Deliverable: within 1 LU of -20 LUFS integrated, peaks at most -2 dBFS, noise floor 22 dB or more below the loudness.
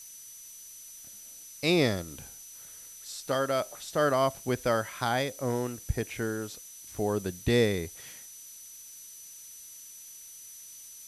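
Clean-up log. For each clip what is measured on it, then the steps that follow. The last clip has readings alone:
steady tone 6 kHz; tone level -48 dBFS; noise floor -48 dBFS; noise floor target -52 dBFS; loudness -29.5 LUFS; peak level -13.0 dBFS; loudness target -20.0 LUFS
-> band-stop 6 kHz, Q 30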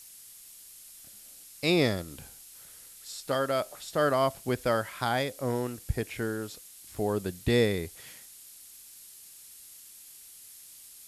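steady tone not found; noise floor -51 dBFS; noise floor target -52 dBFS
-> noise print and reduce 6 dB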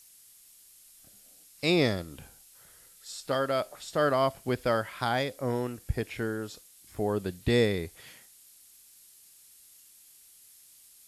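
noise floor -57 dBFS; loudness -29.5 LUFS; peak level -13.0 dBFS; loudness target -20.0 LUFS
-> trim +9.5 dB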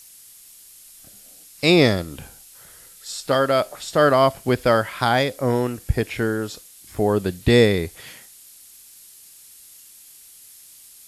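loudness -20.0 LUFS; peak level -3.5 dBFS; noise floor -47 dBFS

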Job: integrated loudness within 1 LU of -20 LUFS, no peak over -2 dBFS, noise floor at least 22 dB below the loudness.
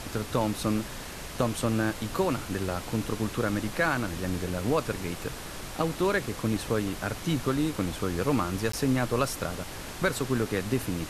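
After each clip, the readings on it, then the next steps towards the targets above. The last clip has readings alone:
dropouts 1; longest dropout 14 ms; noise floor -40 dBFS; noise floor target -52 dBFS; loudness -29.5 LUFS; peak level -11.5 dBFS; loudness target -20.0 LUFS
-> interpolate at 8.72 s, 14 ms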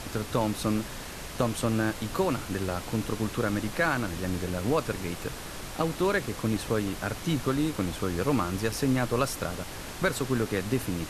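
dropouts 0; noise floor -40 dBFS; noise floor target -52 dBFS
-> noise print and reduce 12 dB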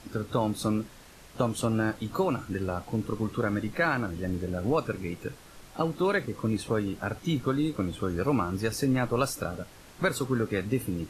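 noise floor -51 dBFS; noise floor target -52 dBFS
-> noise print and reduce 6 dB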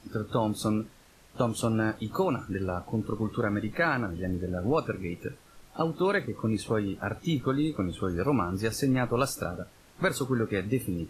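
noise floor -56 dBFS; loudness -29.5 LUFS; peak level -12.0 dBFS; loudness target -20.0 LUFS
-> trim +9.5 dB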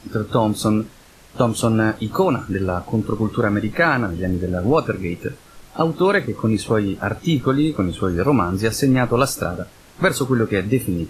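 loudness -20.0 LUFS; peak level -2.5 dBFS; noise floor -47 dBFS

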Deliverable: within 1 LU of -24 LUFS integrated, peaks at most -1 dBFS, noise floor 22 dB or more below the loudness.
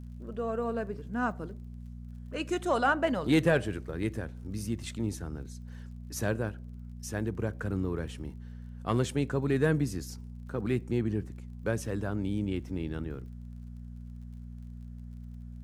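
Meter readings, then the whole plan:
tick rate 39 per s; hum 60 Hz; highest harmonic 240 Hz; hum level -41 dBFS; loudness -32.0 LUFS; peak level -13.0 dBFS; loudness target -24.0 LUFS
-> de-click; de-hum 60 Hz, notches 4; trim +8 dB

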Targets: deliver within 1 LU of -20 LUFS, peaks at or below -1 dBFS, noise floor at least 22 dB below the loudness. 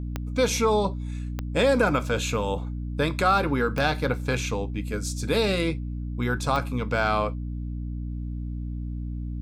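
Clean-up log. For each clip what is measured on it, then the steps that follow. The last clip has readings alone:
clicks found 4; hum 60 Hz; highest harmonic 300 Hz; hum level -29 dBFS; loudness -26.5 LUFS; peak level -8.0 dBFS; loudness target -20.0 LUFS
-> de-click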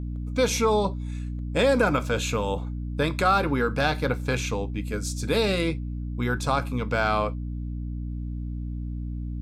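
clicks found 0; hum 60 Hz; highest harmonic 300 Hz; hum level -29 dBFS
-> hum notches 60/120/180/240/300 Hz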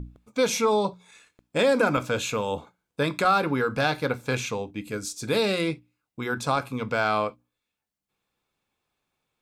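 hum not found; loudness -26.0 LUFS; peak level -8.5 dBFS; loudness target -20.0 LUFS
-> trim +6 dB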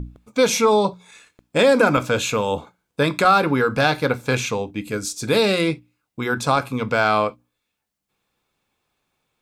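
loudness -20.0 LUFS; peak level -2.5 dBFS; noise floor -79 dBFS

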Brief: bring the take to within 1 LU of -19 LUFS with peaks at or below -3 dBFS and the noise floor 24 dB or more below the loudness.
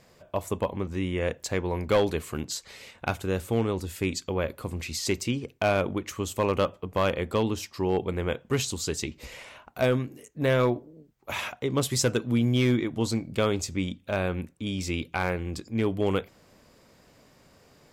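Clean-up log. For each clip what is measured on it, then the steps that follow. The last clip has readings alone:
clipped samples 0.3%; clipping level -16.0 dBFS; loudness -28.5 LUFS; peak level -16.0 dBFS; loudness target -19.0 LUFS
-> clip repair -16 dBFS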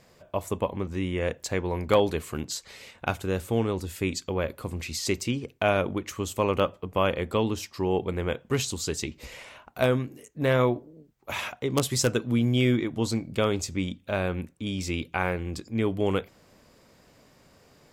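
clipped samples 0.0%; loudness -28.0 LUFS; peak level -7.0 dBFS; loudness target -19.0 LUFS
-> trim +9 dB; peak limiter -3 dBFS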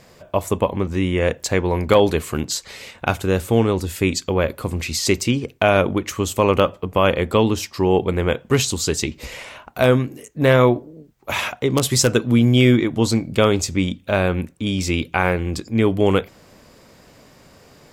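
loudness -19.5 LUFS; peak level -3.0 dBFS; noise floor -51 dBFS

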